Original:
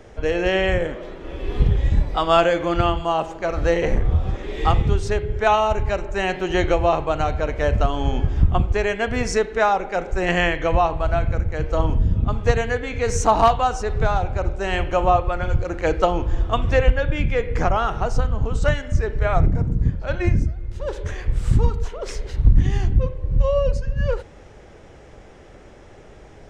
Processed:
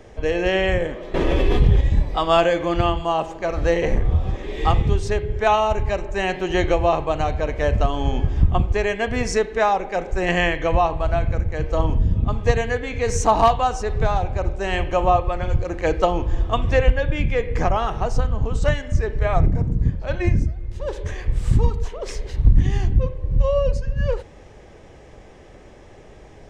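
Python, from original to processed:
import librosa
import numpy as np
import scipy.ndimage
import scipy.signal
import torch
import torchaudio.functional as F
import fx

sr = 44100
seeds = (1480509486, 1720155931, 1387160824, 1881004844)

y = fx.env_flatten(x, sr, amount_pct=70, at=(1.14, 1.81))
y = fx.notch(y, sr, hz=1400.0, q=8.2)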